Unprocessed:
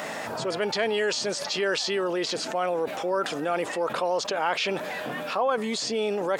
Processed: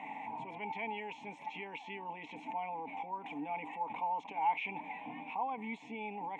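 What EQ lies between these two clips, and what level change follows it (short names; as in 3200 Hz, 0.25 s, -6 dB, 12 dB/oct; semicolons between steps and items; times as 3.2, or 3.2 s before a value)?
vowel filter u; high shelf 3900 Hz -8.5 dB; fixed phaser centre 1300 Hz, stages 6; +7.0 dB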